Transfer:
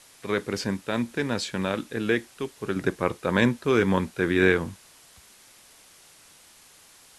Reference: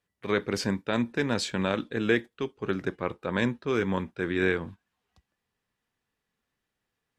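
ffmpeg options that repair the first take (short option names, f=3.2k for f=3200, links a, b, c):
-af "afwtdn=0.0028,asetnsamples=n=441:p=0,asendcmd='2.76 volume volume -5.5dB',volume=0dB"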